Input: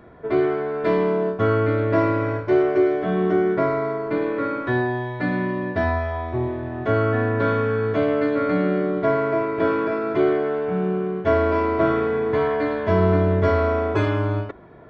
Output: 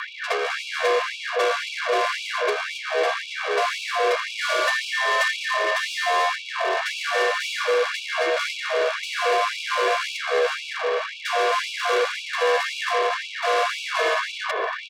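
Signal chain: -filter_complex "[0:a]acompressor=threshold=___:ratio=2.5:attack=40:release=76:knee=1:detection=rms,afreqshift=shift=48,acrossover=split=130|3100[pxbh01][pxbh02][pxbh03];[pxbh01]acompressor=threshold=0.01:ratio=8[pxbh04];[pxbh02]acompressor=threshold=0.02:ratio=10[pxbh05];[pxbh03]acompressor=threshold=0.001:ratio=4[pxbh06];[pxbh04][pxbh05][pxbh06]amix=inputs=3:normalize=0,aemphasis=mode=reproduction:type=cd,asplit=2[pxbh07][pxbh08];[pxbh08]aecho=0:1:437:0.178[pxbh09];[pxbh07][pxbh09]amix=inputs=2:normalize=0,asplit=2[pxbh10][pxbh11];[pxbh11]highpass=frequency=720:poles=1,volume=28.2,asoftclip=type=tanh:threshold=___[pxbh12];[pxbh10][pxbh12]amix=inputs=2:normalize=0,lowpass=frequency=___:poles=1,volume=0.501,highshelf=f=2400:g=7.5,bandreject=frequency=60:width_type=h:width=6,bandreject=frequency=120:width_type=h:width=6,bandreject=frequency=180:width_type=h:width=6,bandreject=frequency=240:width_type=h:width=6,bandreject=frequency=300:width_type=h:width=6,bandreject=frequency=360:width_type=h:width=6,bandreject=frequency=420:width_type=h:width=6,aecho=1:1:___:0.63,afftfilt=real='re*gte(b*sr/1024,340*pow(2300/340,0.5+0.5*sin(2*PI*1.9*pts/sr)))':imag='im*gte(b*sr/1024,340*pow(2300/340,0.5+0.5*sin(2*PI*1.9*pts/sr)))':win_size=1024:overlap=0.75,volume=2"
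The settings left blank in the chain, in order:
0.0631, 0.0794, 3200, 1.8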